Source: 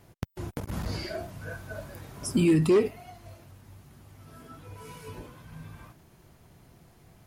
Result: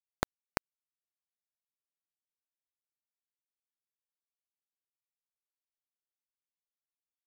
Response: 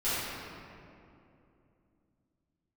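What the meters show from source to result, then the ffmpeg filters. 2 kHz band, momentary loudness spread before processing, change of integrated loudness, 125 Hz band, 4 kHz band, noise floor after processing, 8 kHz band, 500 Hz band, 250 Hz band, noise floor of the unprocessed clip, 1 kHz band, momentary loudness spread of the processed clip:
-7.0 dB, 24 LU, -11.0 dB, -22.5 dB, -10.0 dB, under -85 dBFS, -11.5 dB, -20.5 dB, -24.5 dB, -59 dBFS, -3.5 dB, 3 LU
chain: -af "acompressor=threshold=-34dB:ratio=16,acrusher=bits=3:mix=0:aa=0.000001,volume=7dB"

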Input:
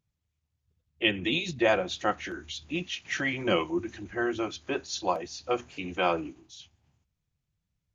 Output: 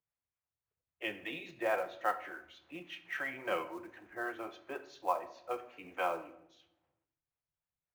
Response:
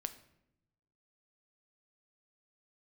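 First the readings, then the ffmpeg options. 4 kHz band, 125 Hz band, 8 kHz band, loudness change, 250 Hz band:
-16.5 dB, -21.0 dB, n/a, -9.0 dB, -15.5 dB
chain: -filter_complex "[0:a]acrossover=split=470 2300:gain=0.126 1 0.0708[a][b][c];[a][b][c]amix=inputs=3:normalize=0,acrossover=split=430[d][e];[d]aeval=exprs='val(0)*(1-0.5/2+0.5/2*cos(2*PI*3.6*n/s))':c=same[f];[e]aeval=exprs='val(0)*(1-0.5/2-0.5/2*cos(2*PI*3.6*n/s))':c=same[g];[f][g]amix=inputs=2:normalize=0,acrusher=bits=6:mode=log:mix=0:aa=0.000001[h];[1:a]atrim=start_sample=2205[i];[h][i]afir=irnorm=-1:irlink=0"

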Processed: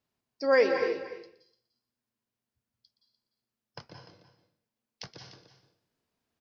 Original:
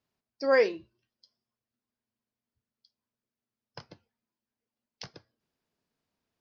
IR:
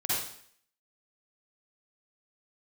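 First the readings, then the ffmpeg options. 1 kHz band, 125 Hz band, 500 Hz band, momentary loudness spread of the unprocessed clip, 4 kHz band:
+1.5 dB, +2.5 dB, +1.0 dB, 15 LU, +1.5 dB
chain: -filter_complex "[0:a]aecho=1:1:297:0.211,asplit=2[a][b];[1:a]atrim=start_sample=2205,adelay=120[c];[b][c]afir=irnorm=-1:irlink=0,volume=-12.5dB[d];[a][d]amix=inputs=2:normalize=0"

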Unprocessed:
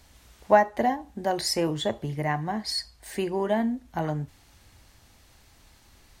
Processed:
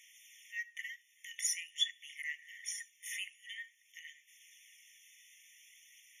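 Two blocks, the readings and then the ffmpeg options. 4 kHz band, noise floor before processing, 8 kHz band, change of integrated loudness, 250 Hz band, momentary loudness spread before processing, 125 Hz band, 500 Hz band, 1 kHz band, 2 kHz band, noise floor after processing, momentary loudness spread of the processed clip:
-5.5 dB, -58 dBFS, -1.0 dB, -12.5 dB, under -40 dB, 10 LU, under -40 dB, under -40 dB, under -40 dB, -7.0 dB, -69 dBFS, 24 LU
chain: -af "acompressor=threshold=-30dB:ratio=2,aeval=exprs='val(0)+0.000891*(sin(2*PI*60*n/s)+sin(2*PI*2*60*n/s)/2+sin(2*PI*3*60*n/s)/3+sin(2*PI*4*60*n/s)/4+sin(2*PI*5*60*n/s)/5)':c=same,aphaser=in_gain=1:out_gain=1:delay=2:decay=0.27:speed=0.48:type=sinusoidal,afftfilt=real='re*eq(mod(floor(b*sr/1024/1800),2),1)':imag='im*eq(mod(floor(b*sr/1024/1800),2),1)':win_size=1024:overlap=0.75,volume=2.5dB"

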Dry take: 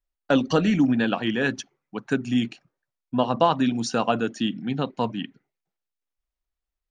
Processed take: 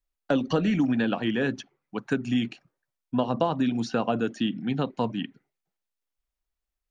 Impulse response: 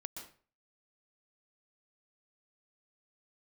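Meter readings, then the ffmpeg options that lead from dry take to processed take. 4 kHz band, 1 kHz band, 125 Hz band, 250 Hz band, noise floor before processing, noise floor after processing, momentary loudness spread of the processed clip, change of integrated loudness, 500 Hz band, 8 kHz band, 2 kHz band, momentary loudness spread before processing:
-4.5 dB, -5.5 dB, -1.5 dB, -2.5 dB, under -85 dBFS, under -85 dBFS, 11 LU, -3.0 dB, -3.0 dB, n/a, -4.5 dB, 12 LU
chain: -filter_complex "[0:a]acrossover=split=640|4100[a][b][c];[a]acompressor=threshold=-21dB:ratio=4[d];[b]acompressor=threshold=-31dB:ratio=4[e];[c]acompressor=threshold=-53dB:ratio=4[f];[d][e][f]amix=inputs=3:normalize=0"

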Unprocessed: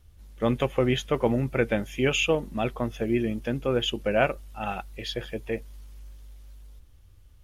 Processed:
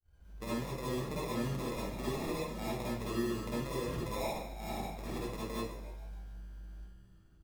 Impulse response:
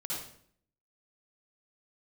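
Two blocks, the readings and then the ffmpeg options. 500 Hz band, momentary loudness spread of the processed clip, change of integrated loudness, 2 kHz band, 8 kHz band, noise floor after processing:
-12.5 dB, 14 LU, -11.0 dB, -14.5 dB, -6.0 dB, -61 dBFS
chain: -filter_complex "[0:a]agate=range=-33dB:threshold=-48dB:ratio=3:detection=peak,alimiter=limit=-17dB:level=0:latency=1:release=153,acompressor=threshold=-30dB:ratio=3,asplit=6[a][b][c][d][e][f];[b]adelay=145,afreqshift=69,volume=-13dB[g];[c]adelay=290,afreqshift=138,volume=-18.5dB[h];[d]adelay=435,afreqshift=207,volume=-24dB[i];[e]adelay=580,afreqshift=276,volume=-29.5dB[j];[f]adelay=725,afreqshift=345,volume=-35.1dB[k];[a][g][h][i][j][k]amix=inputs=6:normalize=0,acrusher=samples=29:mix=1:aa=0.000001[l];[1:a]atrim=start_sample=2205,asetrate=48510,aresample=44100[m];[l][m]afir=irnorm=-1:irlink=0,volume=-6.5dB"

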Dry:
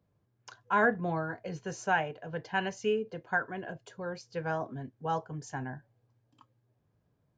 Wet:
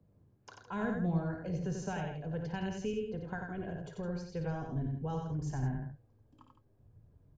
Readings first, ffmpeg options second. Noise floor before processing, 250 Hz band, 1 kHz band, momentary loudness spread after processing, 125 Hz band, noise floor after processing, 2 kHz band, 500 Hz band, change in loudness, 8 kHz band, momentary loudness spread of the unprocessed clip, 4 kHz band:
-75 dBFS, +2.0 dB, -11.0 dB, 8 LU, +5.0 dB, -68 dBFS, -13.5 dB, -6.0 dB, -4.0 dB, -4.5 dB, 13 LU, -7.5 dB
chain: -filter_complex "[0:a]asubboost=boost=5:cutoff=77,acrossover=split=160|3000[a][b][c];[b]acompressor=threshold=-47dB:ratio=2.5[d];[a][d][c]amix=inputs=3:normalize=0,tiltshelf=f=690:g=8,bandreject=f=60:t=h:w=6,bandreject=f=120:t=h:w=6,asplit=2[e][f];[f]aecho=0:1:55.39|90.38|163.3:0.316|0.631|0.316[g];[e][g]amix=inputs=2:normalize=0,volume=1.5dB"

